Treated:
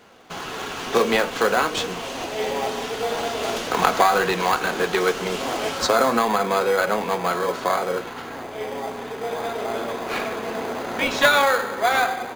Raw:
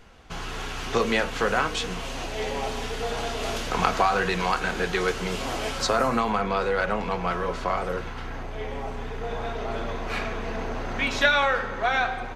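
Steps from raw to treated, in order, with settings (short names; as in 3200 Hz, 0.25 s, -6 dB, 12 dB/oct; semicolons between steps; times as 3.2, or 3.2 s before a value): HPF 250 Hz 12 dB/oct; in parallel at -6 dB: sample-and-hold 16×; on the sum: gain +2.5 dB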